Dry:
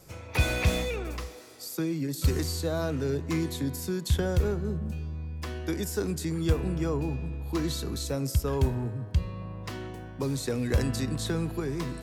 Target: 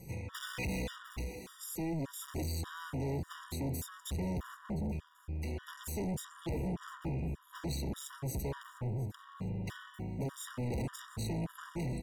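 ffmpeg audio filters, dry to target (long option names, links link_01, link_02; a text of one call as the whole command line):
ffmpeg -i in.wav -filter_complex "[0:a]equalizer=frequency=125:width_type=o:width=0.33:gain=7,equalizer=frequency=200:width_type=o:width=0.33:gain=9,equalizer=frequency=630:width_type=o:width=0.33:gain=-12,equalizer=frequency=5000:width_type=o:width=0.33:gain=-9,asoftclip=type=tanh:threshold=-36dB,asplit=2[link_01][link_02];[link_02]aecho=0:1:705|1410|2115:0.112|0.0471|0.0198[link_03];[link_01][link_03]amix=inputs=2:normalize=0,afftfilt=real='re*gt(sin(2*PI*1.7*pts/sr)*(1-2*mod(floor(b*sr/1024/960),2)),0)':imag='im*gt(sin(2*PI*1.7*pts/sr)*(1-2*mod(floor(b*sr/1024/960),2)),0)':win_size=1024:overlap=0.75,volume=2.5dB" out.wav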